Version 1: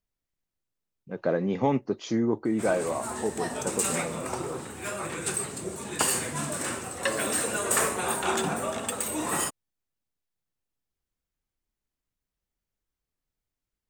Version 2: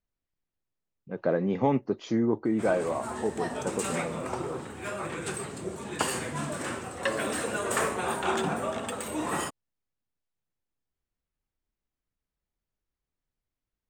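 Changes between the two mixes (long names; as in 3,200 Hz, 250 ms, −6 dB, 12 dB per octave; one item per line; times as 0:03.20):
background: remove notch filter 3,200 Hz, Q 29
master: add low-pass filter 3,000 Hz 6 dB per octave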